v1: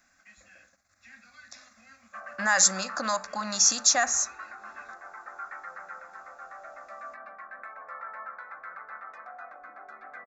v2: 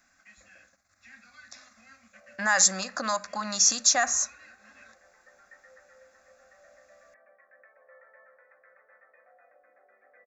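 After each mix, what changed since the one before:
background: add cascade formant filter e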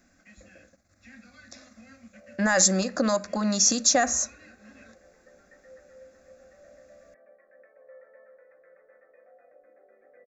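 background -3.5 dB; master: add resonant low shelf 650 Hz +11.5 dB, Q 1.5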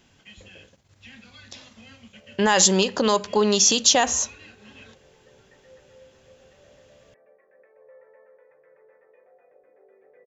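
background -3.5 dB; master: remove static phaser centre 620 Hz, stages 8

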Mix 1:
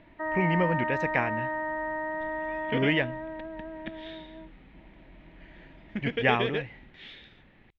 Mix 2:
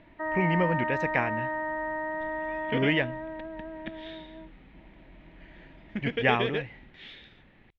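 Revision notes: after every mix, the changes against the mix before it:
no change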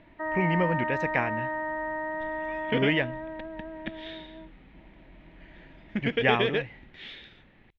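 second sound +3.5 dB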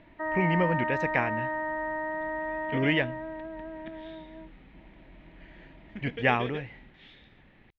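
second sound -11.5 dB

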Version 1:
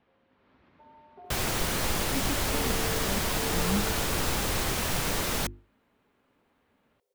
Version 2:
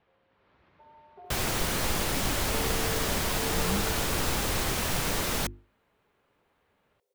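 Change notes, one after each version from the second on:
speech: add peaking EQ 250 Hz -10 dB 0.53 oct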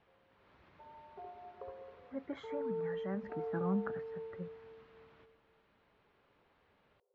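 second sound: muted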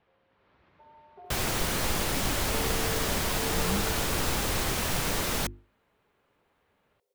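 second sound: unmuted

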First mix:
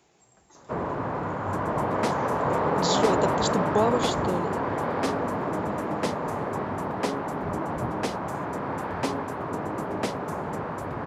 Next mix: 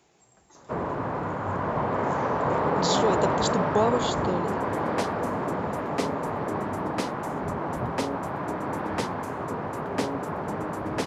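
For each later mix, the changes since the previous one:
second sound: entry +2.95 s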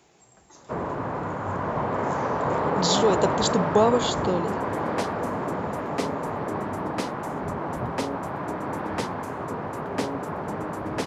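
speech +4.0 dB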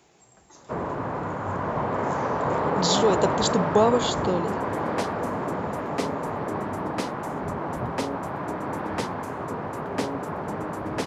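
no change

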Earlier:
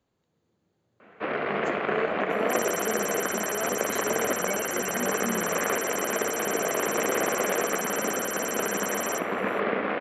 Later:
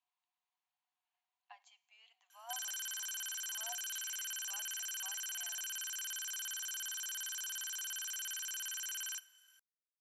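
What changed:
speech -7.0 dB; first sound: muted; master: add rippled Chebyshev high-pass 700 Hz, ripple 9 dB

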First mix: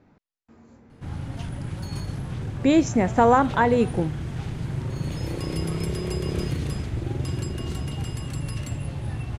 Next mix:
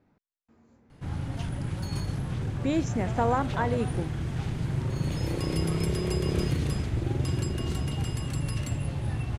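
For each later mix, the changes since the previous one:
speech -9.0 dB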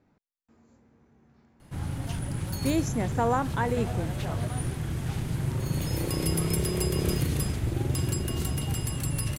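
background: entry +0.70 s; master: remove distance through air 65 m

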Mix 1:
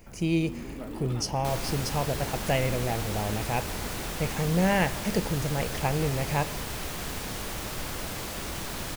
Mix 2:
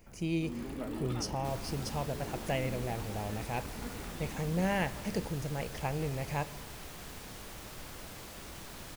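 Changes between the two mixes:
speech -7.0 dB; second sound -11.5 dB

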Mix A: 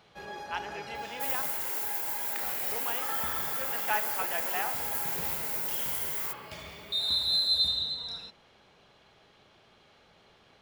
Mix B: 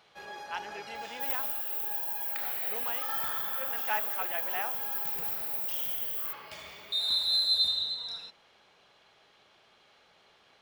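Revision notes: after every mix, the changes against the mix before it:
first sound: add bass shelf 340 Hz -12 dB; second sound: add inverse Chebyshev high-pass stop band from 2.8 kHz, stop band 80 dB; reverb: off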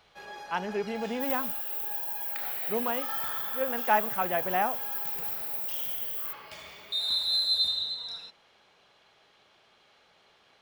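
speech: remove band-pass filter 4.2 kHz, Q 0.57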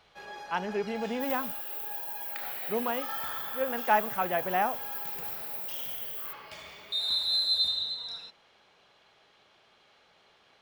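master: add treble shelf 8.8 kHz -4 dB

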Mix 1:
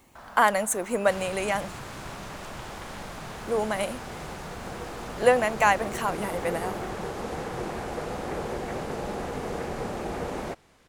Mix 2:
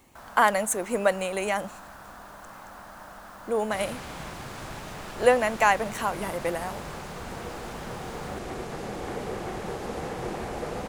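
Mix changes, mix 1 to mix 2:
first sound: remove low-pass 5.7 kHz; second sound: entry +2.65 s

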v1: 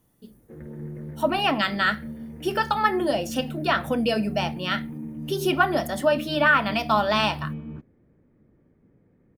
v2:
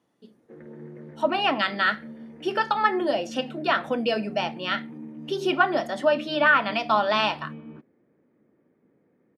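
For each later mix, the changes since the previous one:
master: add band-pass 260–4800 Hz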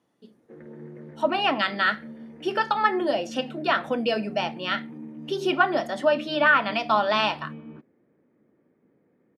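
no change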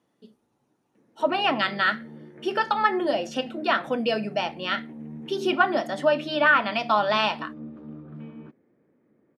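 background: entry +0.70 s

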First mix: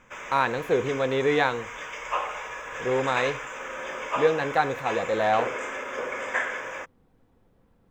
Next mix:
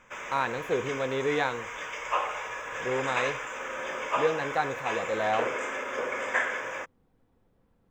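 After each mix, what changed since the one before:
speech -5.0 dB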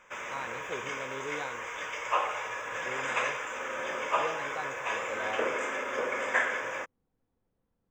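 speech -11.5 dB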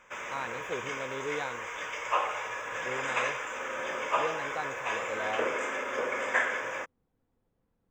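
speech +5.0 dB; reverb: off

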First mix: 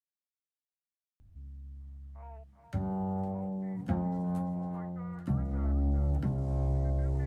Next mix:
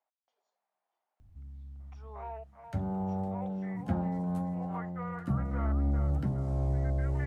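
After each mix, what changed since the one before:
speech: unmuted; second sound +10.0 dB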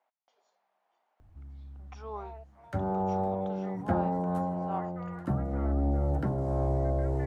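speech +10.5 dB; first sound: add high-order bell 740 Hz +9 dB 2.8 oct; second sound -5.0 dB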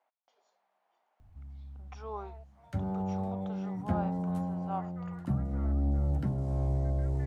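first sound: add high-order bell 740 Hz -9 dB 2.8 oct; second sound -6.0 dB

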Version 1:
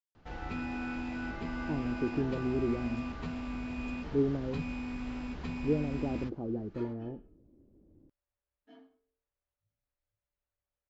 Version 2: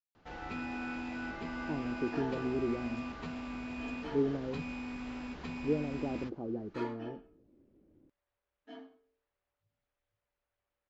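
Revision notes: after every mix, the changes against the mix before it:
second sound +9.0 dB; master: add bass shelf 150 Hz -10 dB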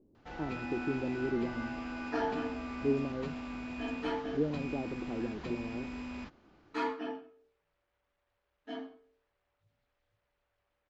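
speech: entry -1.30 s; second sound +8.0 dB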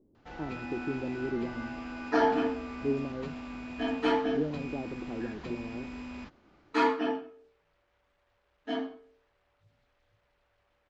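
second sound +8.5 dB

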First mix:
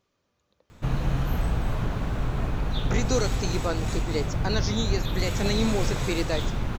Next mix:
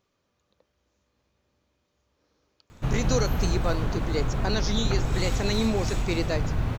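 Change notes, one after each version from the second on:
background: entry +2.00 s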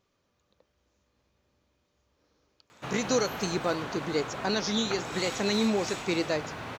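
background: add frequency weighting A

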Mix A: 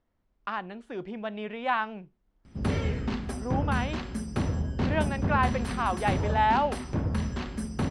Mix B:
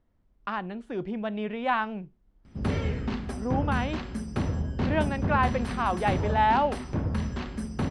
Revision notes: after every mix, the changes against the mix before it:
speech: add bass shelf 340 Hz +8 dB; background: add treble shelf 8.1 kHz -8 dB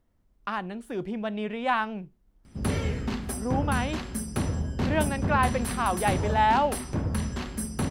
master: remove distance through air 120 m

